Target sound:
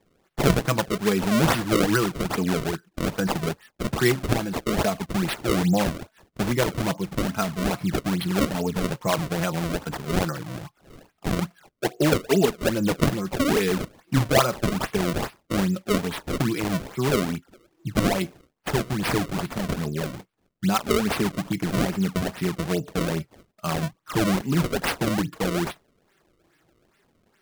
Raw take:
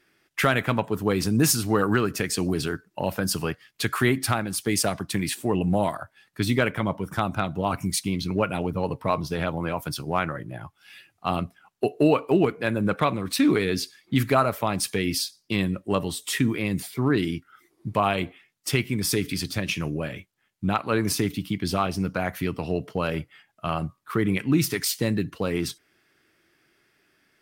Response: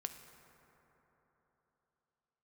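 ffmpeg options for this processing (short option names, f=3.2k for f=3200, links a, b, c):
-af "flanger=delay=4.4:depth=2.1:regen=2:speed=0.81:shape=triangular,acrusher=samples=30:mix=1:aa=0.000001:lfo=1:lforange=48:lforate=2.4,volume=4dB"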